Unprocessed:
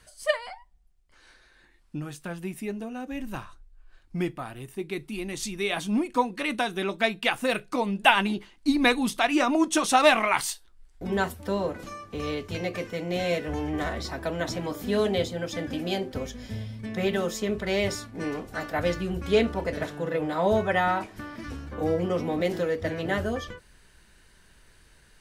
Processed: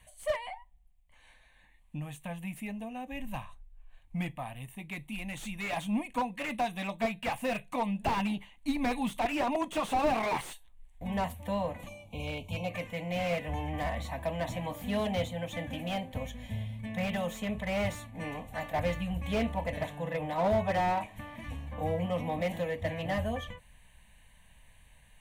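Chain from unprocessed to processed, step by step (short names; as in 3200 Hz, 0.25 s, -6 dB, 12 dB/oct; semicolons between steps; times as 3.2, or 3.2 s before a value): spectral gain 11.88–12.7, 1100–2200 Hz -29 dB; fixed phaser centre 1400 Hz, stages 6; slew limiter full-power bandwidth 42 Hz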